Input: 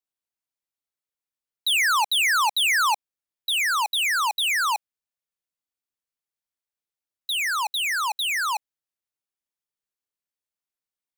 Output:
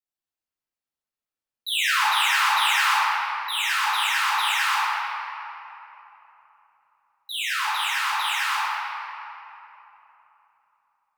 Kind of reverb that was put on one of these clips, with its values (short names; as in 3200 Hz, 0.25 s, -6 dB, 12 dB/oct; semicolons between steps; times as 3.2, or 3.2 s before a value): shoebox room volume 200 m³, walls hard, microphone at 2.1 m; gain -12 dB